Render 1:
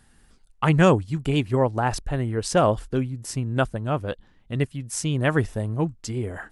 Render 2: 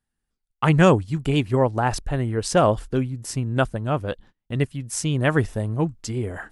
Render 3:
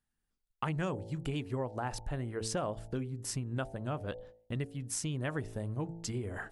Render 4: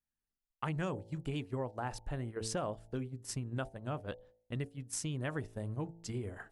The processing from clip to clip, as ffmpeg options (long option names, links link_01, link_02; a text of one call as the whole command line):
ffmpeg -i in.wav -af "agate=range=-26dB:threshold=-47dB:ratio=16:detection=peak,volume=1.5dB" out.wav
ffmpeg -i in.wav -af "bandreject=frequency=55.71:width_type=h:width=4,bandreject=frequency=111.42:width_type=h:width=4,bandreject=frequency=167.13:width_type=h:width=4,bandreject=frequency=222.84:width_type=h:width=4,bandreject=frequency=278.55:width_type=h:width=4,bandreject=frequency=334.26:width_type=h:width=4,bandreject=frequency=389.97:width_type=h:width=4,bandreject=frequency=445.68:width_type=h:width=4,bandreject=frequency=501.39:width_type=h:width=4,bandreject=frequency=557.1:width_type=h:width=4,bandreject=frequency=612.81:width_type=h:width=4,bandreject=frequency=668.52:width_type=h:width=4,bandreject=frequency=724.23:width_type=h:width=4,bandreject=frequency=779.94:width_type=h:width=4,bandreject=frequency=835.65:width_type=h:width=4,bandreject=frequency=891.36:width_type=h:width=4,acompressor=threshold=-30dB:ratio=4,volume=-4dB" out.wav
ffmpeg -i in.wav -af "agate=range=-8dB:threshold=-38dB:ratio=16:detection=peak,volume=-2dB" out.wav